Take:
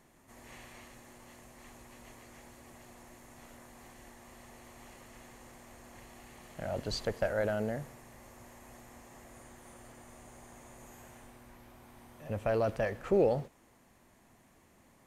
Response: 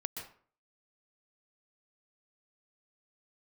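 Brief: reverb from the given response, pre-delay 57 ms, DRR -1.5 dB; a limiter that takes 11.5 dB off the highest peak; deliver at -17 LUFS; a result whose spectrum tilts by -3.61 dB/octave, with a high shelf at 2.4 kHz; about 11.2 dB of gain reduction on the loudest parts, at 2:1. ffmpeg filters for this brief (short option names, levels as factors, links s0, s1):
-filter_complex "[0:a]highshelf=f=2400:g=8,acompressor=threshold=0.00708:ratio=2,alimiter=level_in=3.98:limit=0.0631:level=0:latency=1,volume=0.251,asplit=2[s0][s1];[1:a]atrim=start_sample=2205,adelay=57[s2];[s1][s2]afir=irnorm=-1:irlink=0,volume=1.12[s3];[s0][s3]amix=inputs=2:normalize=0,volume=25.1"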